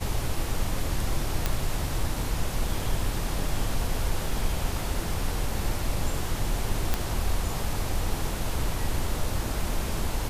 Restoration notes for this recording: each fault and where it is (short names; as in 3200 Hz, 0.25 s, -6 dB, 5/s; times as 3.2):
1.46 pop -9 dBFS
6.94 pop -9 dBFS